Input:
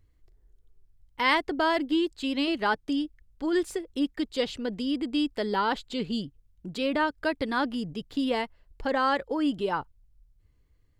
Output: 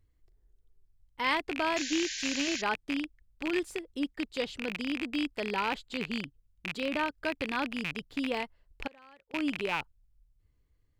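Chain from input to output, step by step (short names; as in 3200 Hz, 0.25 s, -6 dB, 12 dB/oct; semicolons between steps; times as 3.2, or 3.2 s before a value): rattling part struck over -40 dBFS, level -16 dBFS; 1.76–2.62 painted sound noise 1500–7300 Hz -32 dBFS; 8.87–9.34 flipped gate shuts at -26 dBFS, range -26 dB; gain -5.5 dB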